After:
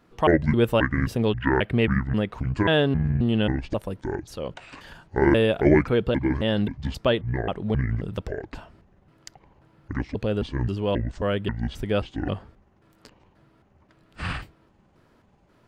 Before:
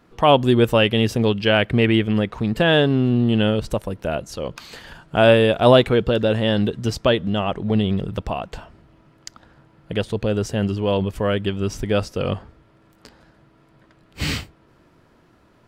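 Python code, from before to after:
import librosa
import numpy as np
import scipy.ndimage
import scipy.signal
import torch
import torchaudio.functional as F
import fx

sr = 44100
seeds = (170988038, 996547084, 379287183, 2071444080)

y = fx.pitch_trill(x, sr, semitones=-9.0, every_ms=267)
y = fx.dynamic_eq(y, sr, hz=6400.0, q=1.2, threshold_db=-46.0, ratio=4.0, max_db=-6)
y = F.gain(torch.from_numpy(y), -4.0).numpy()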